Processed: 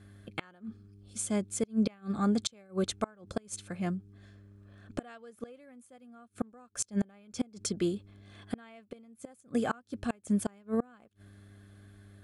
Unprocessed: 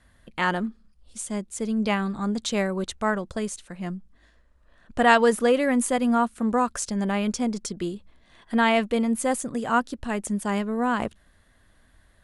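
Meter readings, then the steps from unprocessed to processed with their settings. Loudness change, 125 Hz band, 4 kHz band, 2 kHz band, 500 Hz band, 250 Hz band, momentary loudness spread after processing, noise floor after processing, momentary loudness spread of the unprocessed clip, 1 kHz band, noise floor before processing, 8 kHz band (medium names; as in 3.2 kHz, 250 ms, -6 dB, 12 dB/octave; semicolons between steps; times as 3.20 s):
-9.5 dB, -4.5 dB, -9.5 dB, -19.0 dB, -12.5 dB, -8.0 dB, 20 LU, -64 dBFS, 14 LU, -18.0 dB, -60 dBFS, -6.0 dB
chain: mains buzz 100 Hz, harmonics 4, -52 dBFS -9 dB/octave; comb of notches 950 Hz; inverted gate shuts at -18 dBFS, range -31 dB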